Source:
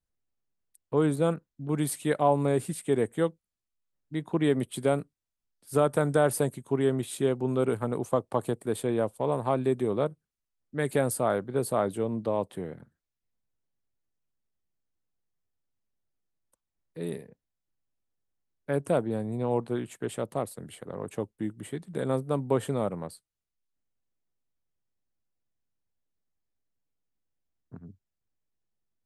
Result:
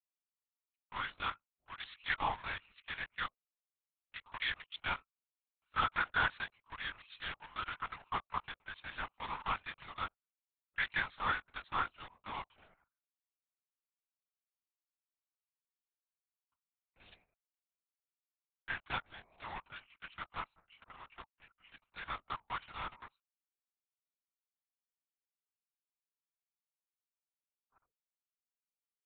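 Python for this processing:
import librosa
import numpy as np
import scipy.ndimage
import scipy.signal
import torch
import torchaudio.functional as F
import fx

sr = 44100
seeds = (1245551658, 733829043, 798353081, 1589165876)

y = fx.wiener(x, sr, points=25)
y = scipy.signal.sosfilt(scipy.signal.butter(4, 1300.0, 'highpass', fs=sr, output='sos'), y)
y = fx.lpc_vocoder(y, sr, seeds[0], excitation='whisper', order=10)
y = y * 10.0 ** (5.5 / 20.0)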